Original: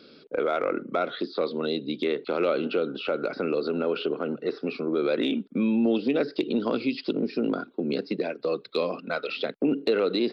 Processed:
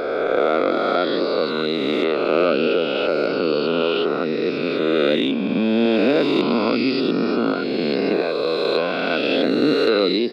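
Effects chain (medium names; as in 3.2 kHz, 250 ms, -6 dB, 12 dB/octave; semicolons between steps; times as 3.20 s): reverse spectral sustain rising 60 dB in 2.88 s; trim +3 dB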